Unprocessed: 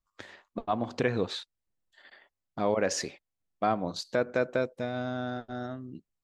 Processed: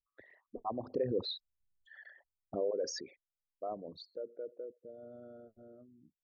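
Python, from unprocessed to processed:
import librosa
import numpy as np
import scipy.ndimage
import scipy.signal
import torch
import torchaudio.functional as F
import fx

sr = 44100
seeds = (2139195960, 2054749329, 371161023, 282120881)

y = fx.envelope_sharpen(x, sr, power=3.0)
y = fx.doppler_pass(y, sr, speed_mps=15, closest_m=4.6, pass_at_s=1.75)
y = y * librosa.db_to_amplitude(3.0)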